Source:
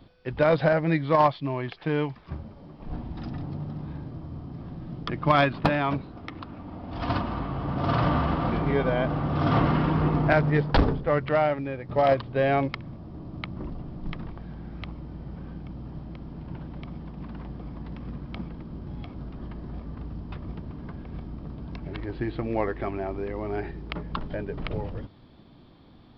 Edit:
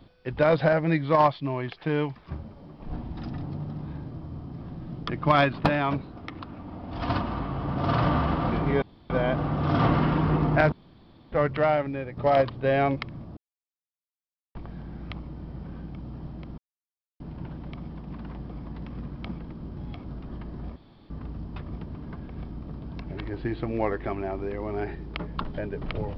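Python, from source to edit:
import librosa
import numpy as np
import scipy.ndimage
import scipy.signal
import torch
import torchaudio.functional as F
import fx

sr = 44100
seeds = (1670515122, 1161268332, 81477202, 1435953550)

y = fx.edit(x, sr, fx.insert_room_tone(at_s=8.82, length_s=0.28),
    fx.room_tone_fill(start_s=10.44, length_s=0.6),
    fx.silence(start_s=13.09, length_s=1.18),
    fx.insert_silence(at_s=16.3, length_s=0.62),
    fx.insert_room_tone(at_s=19.86, length_s=0.34), tone=tone)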